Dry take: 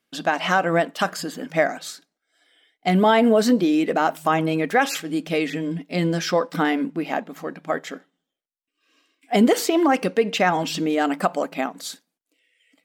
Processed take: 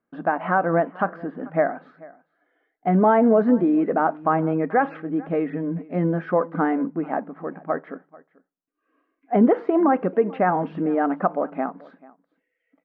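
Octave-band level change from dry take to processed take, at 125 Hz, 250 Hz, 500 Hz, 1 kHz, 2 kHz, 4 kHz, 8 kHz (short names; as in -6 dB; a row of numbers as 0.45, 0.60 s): 0.0 dB, 0.0 dB, 0.0 dB, 0.0 dB, -5.5 dB, under -25 dB, under -40 dB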